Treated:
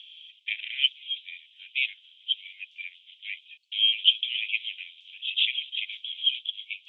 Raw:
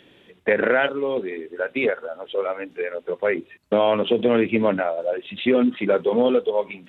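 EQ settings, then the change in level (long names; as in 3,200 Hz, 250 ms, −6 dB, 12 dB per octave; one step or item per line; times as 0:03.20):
Butterworth high-pass 2,400 Hz 72 dB per octave
high-frequency loss of the air 120 metres
parametric band 3,200 Hz +13 dB 0.25 octaves
+4.5 dB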